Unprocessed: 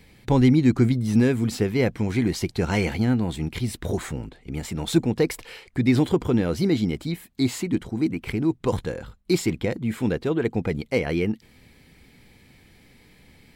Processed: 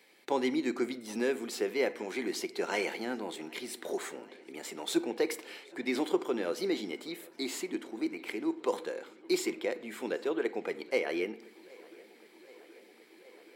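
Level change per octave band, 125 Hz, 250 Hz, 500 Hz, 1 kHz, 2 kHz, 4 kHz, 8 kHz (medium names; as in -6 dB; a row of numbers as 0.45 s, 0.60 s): -33.0 dB, -13.0 dB, -6.0 dB, -5.0 dB, -5.0 dB, -5.5 dB, -5.5 dB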